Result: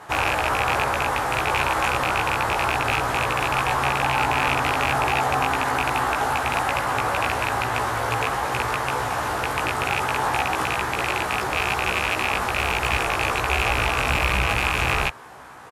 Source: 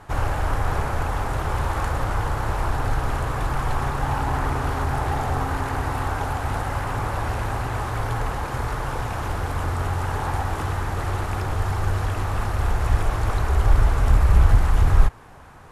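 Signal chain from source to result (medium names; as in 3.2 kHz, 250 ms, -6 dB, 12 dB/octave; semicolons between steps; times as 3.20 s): rattle on loud lows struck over -21 dBFS, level -14 dBFS; high-pass 450 Hz 6 dB/octave; compressor with a negative ratio -27 dBFS; doubling 16 ms -2.5 dB; trim +4.5 dB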